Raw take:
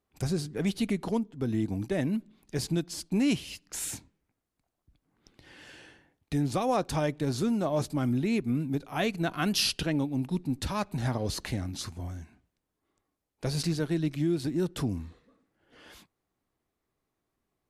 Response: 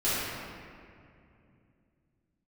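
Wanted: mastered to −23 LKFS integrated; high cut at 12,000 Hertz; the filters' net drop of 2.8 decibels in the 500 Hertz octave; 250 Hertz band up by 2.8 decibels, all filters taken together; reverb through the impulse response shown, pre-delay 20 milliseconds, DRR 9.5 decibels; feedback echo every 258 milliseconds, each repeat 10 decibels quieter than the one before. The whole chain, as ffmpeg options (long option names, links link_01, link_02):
-filter_complex "[0:a]lowpass=12000,equalizer=frequency=250:width_type=o:gain=5,equalizer=frequency=500:width_type=o:gain=-6,aecho=1:1:258|516|774|1032:0.316|0.101|0.0324|0.0104,asplit=2[link_01][link_02];[1:a]atrim=start_sample=2205,adelay=20[link_03];[link_02][link_03]afir=irnorm=-1:irlink=0,volume=-22dB[link_04];[link_01][link_04]amix=inputs=2:normalize=0,volume=5dB"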